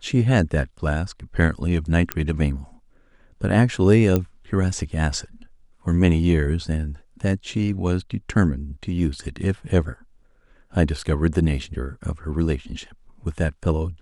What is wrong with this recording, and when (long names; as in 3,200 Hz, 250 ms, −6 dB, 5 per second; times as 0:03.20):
0:02.12: click −6 dBFS
0:04.16: click −8 dBFS